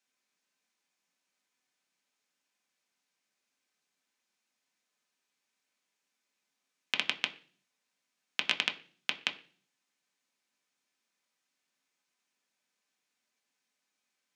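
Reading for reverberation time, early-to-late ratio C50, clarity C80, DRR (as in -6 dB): 0.45 s, 16.5 dB, 20.0 dB, 4.5 dB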